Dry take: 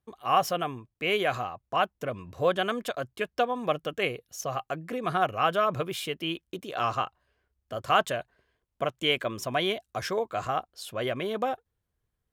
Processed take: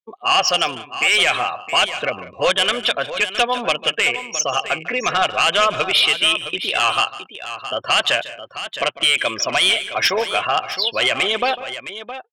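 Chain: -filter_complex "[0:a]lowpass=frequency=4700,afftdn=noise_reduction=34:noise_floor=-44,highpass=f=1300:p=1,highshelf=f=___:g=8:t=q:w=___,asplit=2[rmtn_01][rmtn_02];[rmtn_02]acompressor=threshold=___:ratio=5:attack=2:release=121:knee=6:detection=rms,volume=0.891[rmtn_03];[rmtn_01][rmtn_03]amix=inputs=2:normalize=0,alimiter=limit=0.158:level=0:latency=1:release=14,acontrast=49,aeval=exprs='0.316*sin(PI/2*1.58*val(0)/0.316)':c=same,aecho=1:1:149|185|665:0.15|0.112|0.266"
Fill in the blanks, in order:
1800, 1.5, 0.0178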